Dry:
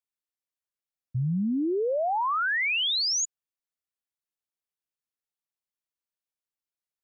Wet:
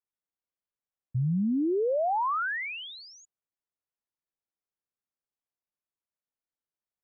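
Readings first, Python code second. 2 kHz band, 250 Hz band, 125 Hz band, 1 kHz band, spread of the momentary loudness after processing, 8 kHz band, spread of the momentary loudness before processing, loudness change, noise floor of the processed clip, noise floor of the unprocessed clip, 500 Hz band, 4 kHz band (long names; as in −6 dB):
−6.0 dB, 0.0 dB, 0.0 dB, −1.0 dB, 11 LU, can't be measured, 8 LU, −3.0 dB, below −85 dBFS, below −85 dBFS, 0.0 dB, −16.5 dB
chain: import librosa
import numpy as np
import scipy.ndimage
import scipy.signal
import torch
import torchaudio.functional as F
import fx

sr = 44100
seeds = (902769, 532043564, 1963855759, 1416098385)

y = scipy.signal.sosfilt(scipy.signal.butter(2, 1400.0, 'lowpass', fs=sr, output='sos'), x)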